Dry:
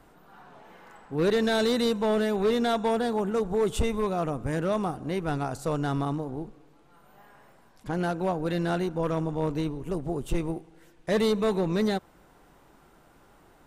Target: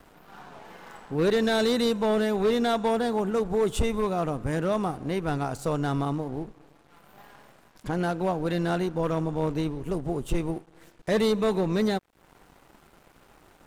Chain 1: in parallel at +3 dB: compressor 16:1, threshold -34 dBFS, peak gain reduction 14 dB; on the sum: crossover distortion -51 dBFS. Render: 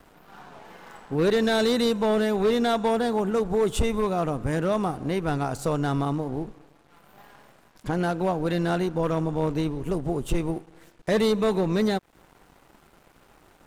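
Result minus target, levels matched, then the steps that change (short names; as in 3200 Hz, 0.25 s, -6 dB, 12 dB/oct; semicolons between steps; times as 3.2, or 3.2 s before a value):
compressor: peak gain reduction -8 dB
change: compressor 16:1, threshold -42.5 dBFS, peak gain reduction 22 dB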